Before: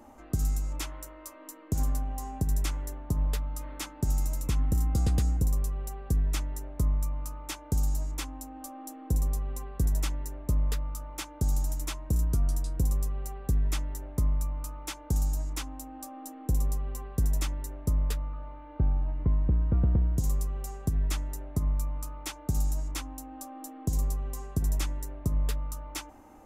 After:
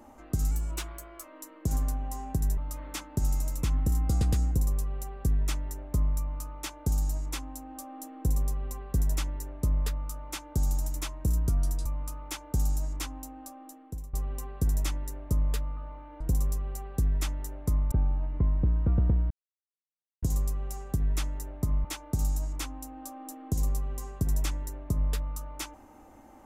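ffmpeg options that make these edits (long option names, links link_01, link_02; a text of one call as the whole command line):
ffmpeg -i in.wav -filter_complex "[0:a]asplit=10[link_01][link_02][link_03][link_04][link_05][link_06][link_07][link_08][link_09][link_10];[link_01]atrim=end=0.514[link_11];[link_02]atrim=start=0.51:end=1.3,asetpts=PTS-STARTPTS,asetrate=48069,aresample=44100,atrim=end_sample=31962,asetpts=PTS-STARTPTS[link_12];[link_03]atrim=start=1.296:end=2.642[link_13];[link_04]atrim=start=3.428:end=12.712[link_14];[link_05]atrim=start=14.418:end=16.7,asetpts=PTS-STARTPTS,afade=type=out:start_time=1.362:duration=0.92:silence=0.1[link_15];[link_06]atrim=start=16.7:end=18.772,asetpts=PTS-STARTPTS,afade=type=in:duration=0.004:curve=hsin:silence=0.1[link_16];[link_07]atrim=start=12.708:end=14.422[link_17];[link_08]atrim=start=18.768:end=20.16,asetpts=PTS-STARTPTS,afade=type=out:start_time=1.388:duration=0.004:curve=hsin,apad=pad_dur=0.92[link_18];[link_09]atrim=start=20.16:end=21.782,asetpts=PTS-STARTPTS,afade=type=in:duration=0.004:curve=hsin[link_19];[link_10]atrim=start=22.198[link_20];[link_11][link_12]acrossfade=duration=0.004:curve1=hsin:curve2=hsin[link_21];[link_21][link_13]acrossfade=duration=0.004:curve1=hsin:curve2=hsin[link_22];[link_22][link_14]acrossfade=duration=0.004:curve1=hsin:curve2=hsin[link_23];[link_15][link_16]concat=n=2:v=0:a=1[link_24];[link_23][link_24]acrossfade=duration=0.004:curve1=hsin:curve2=hsin[link_25];[link_25][link_17]acrossfade=duration=0.004:curve1=hsin:curve2=hsin[link_26];[link_18][link_19]concat=n=2:v=0:a=1[link_27];[link_26][link_27]acrossfade=duration=0.004:curve1=hsin:curve2=hsin[link_28];[link_28][link_20]acrossfade=duration=0.004:curve1=hsin:curve2=hsin" out.wav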